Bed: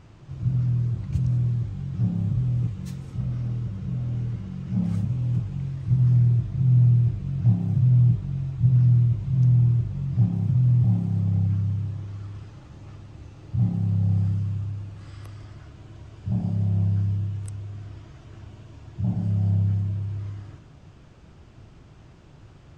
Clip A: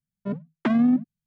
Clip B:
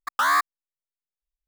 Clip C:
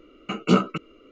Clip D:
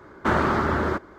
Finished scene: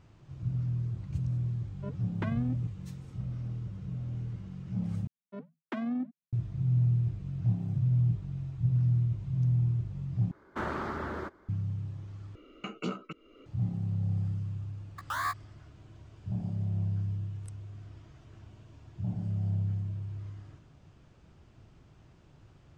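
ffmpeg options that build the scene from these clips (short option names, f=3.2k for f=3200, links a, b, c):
-filter_complex "[1:a]asplit=2[a][b];[0:a]volume=-8.5dB[c];[a]aecho=1:1:2:0.39[d];[b]highpass=240[e];[3:a]acompressor=threshold=-42dB:ratio=2:attack=22:release=430:knee=1:detection=peak[f];[2:a]asplit=2[g][h];[h]adelay=15,volume=-7.5dB[i];[g][i]amix=inputs=2:normalize=0[j];[c]asplit=4[k][l][m][n];[k]atrim=end=5.074[o];[e]atrim=end=1.26,asetpts=PTS-STARTPTS,volume=-10.5dB[p];[l]atrim=start=6.326:end=10.314[q];[4:a]atrim=end=1.18,asetpts=PTS-STARTPTS,volume=-13dB[r];[m]atrim=start=11.486:end=12.354[s];[f]atrim=end=1.11,asetpts=PTS-STARTPTS,volume=-2.5dB[t];[n]atrim=start=13.456[u];[d]atrim=end=1.26,asetpts=PTS-STARTPTS,volume=-11dB,afade=t=in:d=0.004:c=hsin,afade=t=out:st=1.256:d=0.004:c=hsin,adelay=1570[v];[j]atrim=end=1.47,asetpts=PTS-STARTPTS,volume=-13dB,afade=t=in:d=0.004:c=hsin,afade=t=out:st=1.466:d=0.004:c=hsin,adelay=14910[w];[o][p]acrossfade=d=0.004:c1=hsin:c2=hsin[x];[x][q]acrossfade=d=0.004:c1=hsin:c2=hsin[y];[y][r]acrossfade=d=0.004:c1=hsin:c2=hsin[z];[z][s]acrossfade=d=0.004:c1=hsin:c2=hsin[aa];[aa][t]acrossfade=d=0.004:c1=hsin:c2=hsin[ab];[ab][u]acrossfade=d=0.004:c1=hsin:c2=hsin[ac];[ac][v][w]amix=inputs=3:normalize=0"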